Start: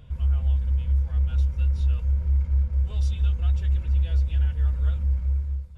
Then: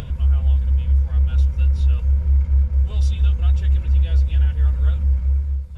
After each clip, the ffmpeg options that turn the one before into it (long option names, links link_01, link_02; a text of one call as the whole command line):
ffmpeg -i in.wav -af "acompressor=mode=upward:threshold=-26dB:ratio=2.5,volume=5.5dB" out.wav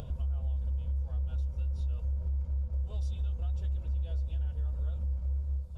ffmpeg -i in.wav -af "equalizer=frequency=630:width_type=o:width=0.9:gain=7,alimiter=limit=-20dB:level=0:latency=1:release=372,equalizer=frequency=2000:width_type=o:width=0.94:gain=-11.5,volume=-6.5dB" out.wav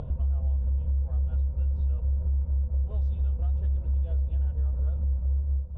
ffmpeg -i in.wav -af "adynamicsmooth=sensitivity=4.5:basefreq=1200,volume=6dB" out.wav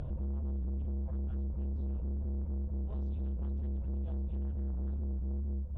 ffmpeg -i in.wav -af "asoftclip=type=tanh:threshold=-33dB" out.wav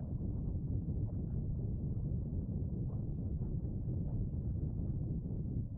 ffmpeg -i in.wav -af "afftfilt=real='hypot(re,im)*cos(2*PI*random(0))':imag='hypot(re,im)*sin(2*PI*random(1))':win_size=512:overlap=0.75,afreqshift=23,adynamicsmooth=sensitivity=0.5:basefreq=1000,volume=3.5dB" out.wav